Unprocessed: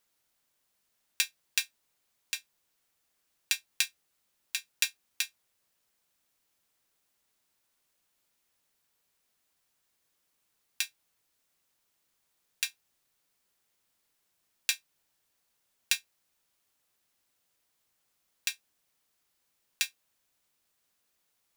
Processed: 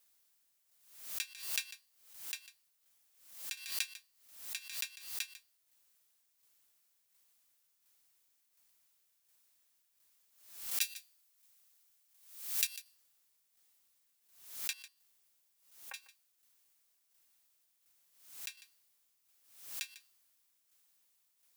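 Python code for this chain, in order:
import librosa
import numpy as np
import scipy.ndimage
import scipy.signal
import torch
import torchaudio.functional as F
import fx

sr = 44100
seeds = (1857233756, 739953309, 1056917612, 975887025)

y = fx.tilt_eq(x, sr, slope=4.0, at=(10.81, 12.67))
y = fx.lowpass(y, sr, hz=1100.0, slope=24, at=(14.73, 15.94))
y = fx.comb_fb(y, sr, f0_hz=100.0, decay_s=0.55, harmonics='odd', damping=0.0, mix_pct=50)
y = fx.dmg_noise_colour(y, sr, seeds[0], colour='blue', level_db=-70.0)
y = fx.tremolo_shape(y, sr, shape='saw_down', hz=1.4, depth_pct=60)
y = y + 10.0 ** (-15.5 / 20.0) * np.pad(y, (int(148 * sr / 1000.0), 0))[:len(y)]
y = fx.pre_swell(y, sr, db_per_s=86.0)
y = F.gain(torch.from_numpy(y), -1.0).numpy()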